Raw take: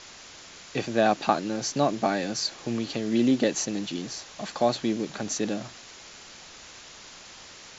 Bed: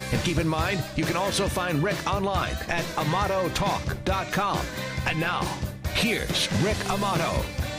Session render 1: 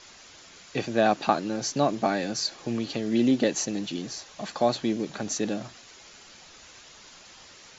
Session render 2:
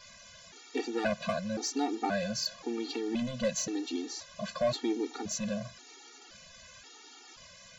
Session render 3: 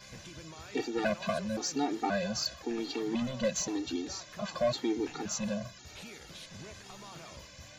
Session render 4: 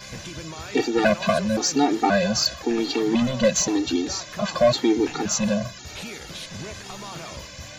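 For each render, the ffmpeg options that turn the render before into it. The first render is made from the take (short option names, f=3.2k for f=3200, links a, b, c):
-af "afftdn=nr=6:nf=-47"
-af "asoftclip=type=tanh:threshold=-19dB,afftfilt=real='re*gt(sin(2*PI*0.95*pts/sr)*(1-2*mod(floor(b*sr/1024/240),2)),0)':imag='im*gt(sin(2*PI*0.95*pts/sr)*(1-2*mod(floor(b*sr/1024/240),2)),0)':win_size=1024:overlap=0.75"
-filter_complex "[1:a]volume=-24dB[a];[0:a][a]amix=inputs=2:normalize=0"
-af "volume=11.5dB"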